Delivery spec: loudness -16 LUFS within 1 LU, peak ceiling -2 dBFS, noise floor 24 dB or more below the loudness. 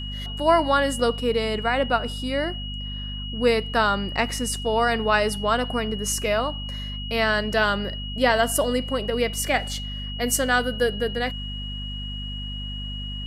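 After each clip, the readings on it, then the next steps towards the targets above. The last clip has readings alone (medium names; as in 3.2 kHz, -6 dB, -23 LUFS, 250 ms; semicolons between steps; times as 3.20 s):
hum 50 Hz; highest harmonic 250 Hz; hum level -30 dBFS; steady tone 2.9 kHz; tone level -34 dBFS; loudness -24.0 LUFS; peak level -6.0 dBFS; loudness target -16.0 LUFS
-> de-hum 50 Hz, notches 5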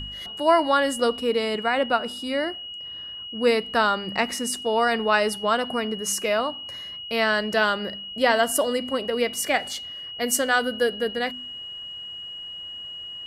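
hum not found; steady tone 2.9 kHz; tone level -34 dBFS
-> band-stop 2.9 kHz, Q 30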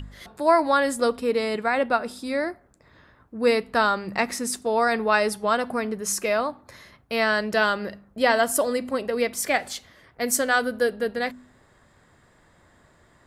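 steady tone not found; loudness -24.0 LUFS; peak level -7.0 dBFS; loudness target -16.0 LUFS
-> trim +8 dB; peak limiter -2 dBFS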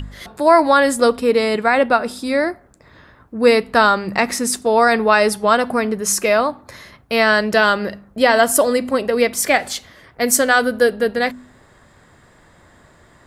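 loudness -16.0 LUFS; peak level -2.0 dBFS; noise floor -51 dBFS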